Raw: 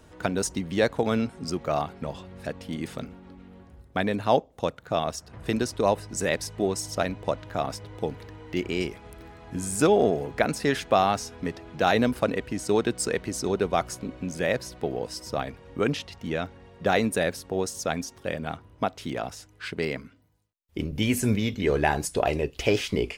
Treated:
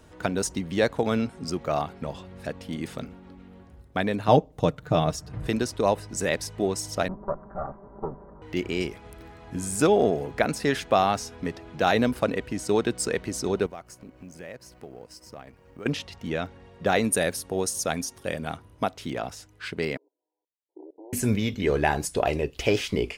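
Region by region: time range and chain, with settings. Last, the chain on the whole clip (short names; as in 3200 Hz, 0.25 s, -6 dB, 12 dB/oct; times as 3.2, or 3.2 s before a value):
4.28–5.47 low shelf 270 Hz +11.5 dB + comb 6.6 ms, depth 46%
7.08–8.42 minimum comb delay 5.1 ms + steep low-pass 1300 Hz
13.66–15.86 G.711 law mismatch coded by A + bell 3600 Hz -9 dB 0.25 oct + compressor 2:1, threshold -48 dBFS
17.04–18.94 bell 9800 Hz +10.5 dB 1.1 oct + notch 7700 Hz, Q 9.2
19.97–21.13 hard clip -22 dBFS + brick-wall FIR band-pass 300–1000 Hz + level quantiser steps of 22 dB
whole clip: dry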